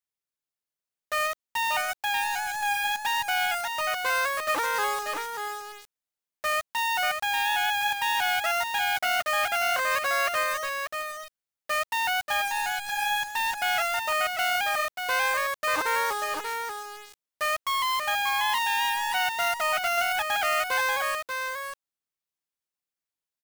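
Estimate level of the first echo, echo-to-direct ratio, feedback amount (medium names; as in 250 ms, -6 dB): -5.5 dB, -5.5 dB, no regular repeats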